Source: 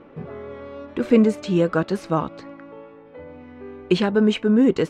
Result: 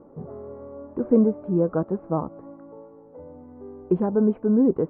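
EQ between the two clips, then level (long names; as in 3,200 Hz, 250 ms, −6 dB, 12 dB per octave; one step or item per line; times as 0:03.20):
low-pass filter 1,000 Hz 24 dB per octave
−2.5 dB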